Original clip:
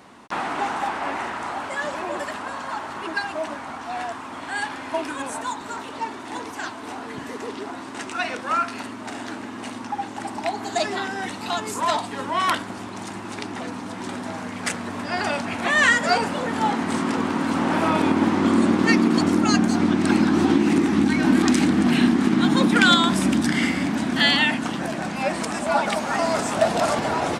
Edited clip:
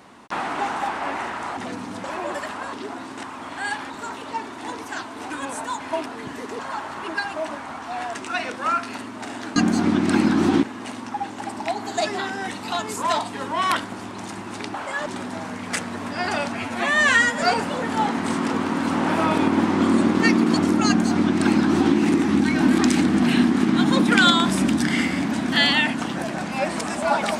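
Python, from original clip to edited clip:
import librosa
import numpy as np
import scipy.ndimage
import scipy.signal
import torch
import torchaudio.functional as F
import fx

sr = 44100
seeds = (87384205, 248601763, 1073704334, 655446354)

y = fx.edit(x, sr, fx.swap(start_s=1.57, length_s=0.32, other_s=13.52, other_length_s=0.47),
    fx.swap(start_s=2.58, length_s=1.56, other_s=7.5, other_length_s=0.5),
    fx.swap(start_s=4.81, length_s=0.26, other_s=5.57, other_length_s=1.4),
    fx.stretch_span(start_s=15.48, length_s=0.58, factor=1.5),
    fx.duplicate(start_s=19.52, length_s=1.07, to_s=9.41), tone=tone)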